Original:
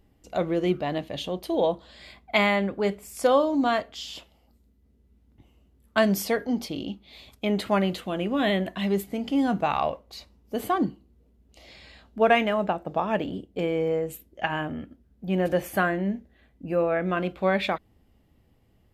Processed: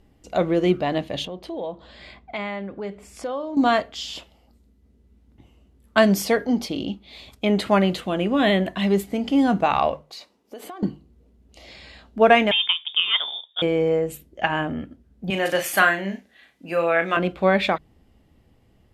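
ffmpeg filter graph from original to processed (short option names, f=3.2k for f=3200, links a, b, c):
-filter_complex "[0:a]asettb=1/sr,asplit=3[a][b][c];[a]atrim=end=1.254[d];[b]atrim=start=1.25:end=3.57,asetpts=PTS-STARTPTS,afade=t=in:d=0.004:c=qsin,afade=t=out:st=2.316:d=0.004:c=qsin,aemphasis=mode=reproduction:type=50fm,acompressor=threshold=-42dB:ratio=2:attack=3.2:release=140:knee=1:detection=peak[e];[c]atrim=start=3.566[f];[d][e]acrossfade=d=0.004:c1=hsin:c2=qsin[g];[g][f]acrossfade=d=0.004:c1=qsin:c2=hsin,asettb=1/sr,asplit=3[h][i][j];[h]atrim=end=10.024[k];[i]atrim=start=10.02:end=10.83,asetpts=PTS-STARTPTS,afade=t=in:d=0.004:c=qsin,afade=t=out:st=0.806:d=0.004:c=qsin,highpass=350,acompressor=threshold=-39dB:ratio=8:attack=3.2:release=140:knee=1:detection=peak[l];[j]atrim=start=10.826[m];[k][l]acrossfade=d=0.004:c1=hsin:c2=qsin[n];[n][m]acrossfade=d=0.004:c1=qsin:c2=hsin,asettb=1/sr,asplit=3[o][p][q];[o]atrim=end=12.514[r];[p]atrim=start=12.51:end=13.62,asetpts=PTS-STARTPTS,afade=t=in:d=0.004:c=qsin,afade=t=out:st=1.106:d=0.004:c=qsin,aemphasis=mode=production:type=bsi,lowpass=f=3.2k:t=q:w=0.5098,lowpass=f=3.2k:t=q:w=0.6013,lowpass=f=3.2k:t=q:w=0.9,lowpass=f=3.2k:t=q:w=2.563,afreqshift=-3800[s];[q]atrim=start=13.616[t];[r][s]acrossfade=d=0.004:c1=hsin:c2=qsin[u];[u][t]acrossfade=d=0.004:c1=qsin:c2=hsin,asettb=1/sr,asplit=3[v][w][x];[v]atrim=end=15.304[y];[w]atrim=start=15.3:end=17.17,asetpts=PTS-STARTPTS,afade=t=in:d=0.004:c=qsin,afade=t=out:st=1.866:d=0.004:c=qsin,highpass=140,tiltshelf=f=890:g=-9,asplit=2[z][aa];[aa]adelay=36,volume=-7dB[ab];[z][ab]amix=inputs=2:normalize=0,atrim=end_sample=82467[ac];[x]atrim=start=17.166[ad];[y][ac]acrossfade=d=0.004:c1=hsin:c2=qsin[ae];[ae][ad]acrossfade=d=0.004:c1=qsin:c2=hsin,lowpass=11k,bandreject=f=50:t=h:w=6,bandreject=f=100:t=h:w=6,bandreject=f=150:t=h:w=6,volume=5dB"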